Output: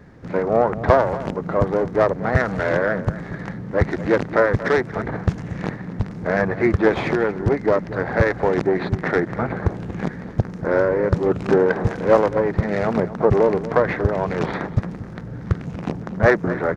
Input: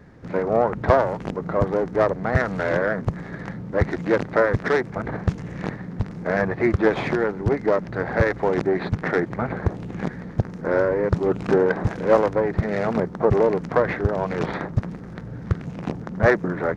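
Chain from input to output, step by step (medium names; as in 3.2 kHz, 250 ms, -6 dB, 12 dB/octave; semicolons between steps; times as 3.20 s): echo from a far wall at 40 m, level -15 dB; trim +2 dB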